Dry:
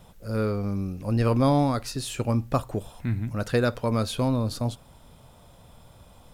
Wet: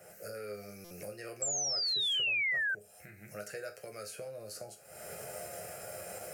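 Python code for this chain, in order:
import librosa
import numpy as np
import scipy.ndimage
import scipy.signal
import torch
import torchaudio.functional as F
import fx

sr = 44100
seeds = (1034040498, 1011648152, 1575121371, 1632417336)

y = fx.recorder_agc(x, sr, target_db=-15.5, rise_db_per_s=51.0, max_gain_db=30)
y = scipy.signal.sosfilt(scipy.signal.butter(2, 250.0, 'highpass', fs=sr, output='sos'), y)
y = fx.peak_eq(y, sr, hz=1100.0, db=-10.0, octaves=0.23)
y = fx.fixed_phaser(y, sr, hz=960.0, stages=6)
y = fx.resonator_bank(y, sr, root=37, chord='major', decay_s=0.26)
y = fx.spec_paint(y, sr, seeds[0], shape='fall', start_s=1.42, length_s=1.33, low_hz=1500.0, high_hz=7700.0, level_db=-20.0)
y = fx.buffer_glitch(y, sr, at_s=(0.84,), block=256, repeats=10)
y = fx.band_squash(y, sr, depth_pct=70)
y = y * librosa.db_to_amplitude(-6.5)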